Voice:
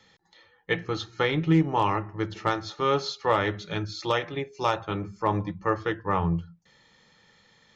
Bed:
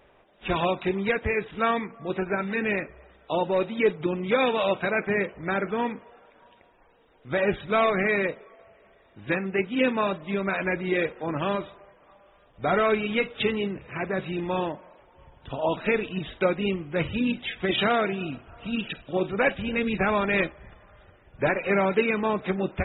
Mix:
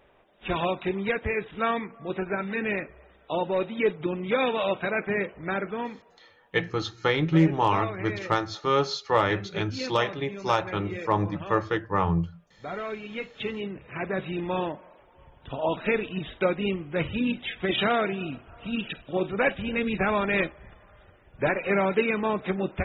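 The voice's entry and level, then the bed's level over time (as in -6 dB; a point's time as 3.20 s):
5.85 s, +1.0 dB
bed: 5.54 s -2 dB
6.36 s -11.5 dB
12.97 s -11.5 dB
14.07 s -1 dB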